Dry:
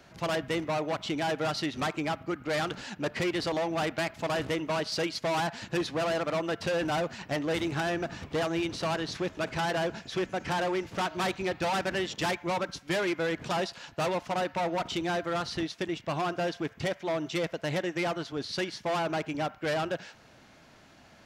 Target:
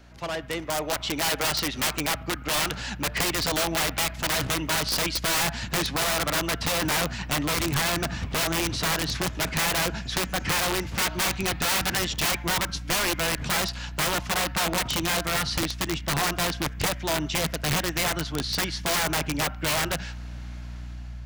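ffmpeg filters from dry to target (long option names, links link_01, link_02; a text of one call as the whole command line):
ffmpeg -i in.wav -filter_complex "[0:a]aeval=exprs='val(0)+0.00447*(sin(2*PI*60*n/s)+sin(2*PI*2*60*n/s)/2+sin(2*PI*3*60*n/s)/3+sin(2*PI*4*60*n/s)/4+sin(2*PI*5*60*n/s)/5)':channel_layout=same,lowshelf=frequency=420:gain=-4.5,acrossover=split=230[link_01][link_02];[link_02]dynaudnorm=framelen=330:gausssize=5:maxgain=8dB[link_03];[link_01][link_03]amix=inputs=2:normalize=0,asubboost=boost=8.5:cutoff=140,aeval=exprs='(mod(7.94*val(0)+1,2)-1)/7.94':channel_layout=same" out.wav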